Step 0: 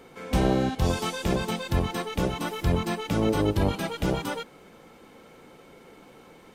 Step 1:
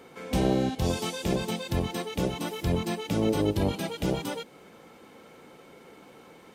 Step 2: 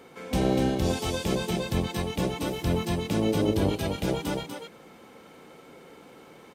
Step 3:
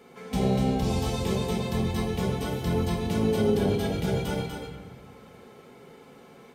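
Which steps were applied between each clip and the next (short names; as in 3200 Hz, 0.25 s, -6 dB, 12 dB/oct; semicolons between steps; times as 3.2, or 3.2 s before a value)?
HPF 100 Hz 6 dB/oct; dynamic EQ 1300 Hz, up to -7 dB, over -45 dBFS, Q 1.1
echo 0.244 s -5 dB
notch comb 310 Hz; reverb RT60 1.3 s, pre-delay 5 ms, DRR 1 dB; gain -2.5 dB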